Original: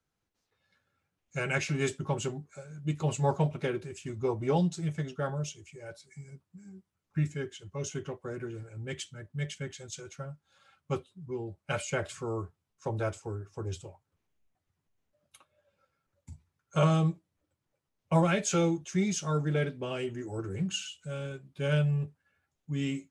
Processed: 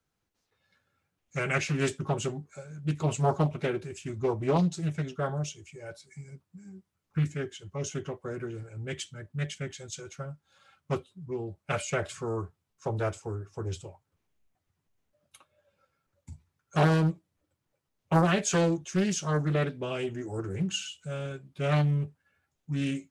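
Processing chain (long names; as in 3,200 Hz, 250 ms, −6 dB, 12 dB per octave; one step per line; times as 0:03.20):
highs frequency-modulated by the lows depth 0.55 ms
level +2 dB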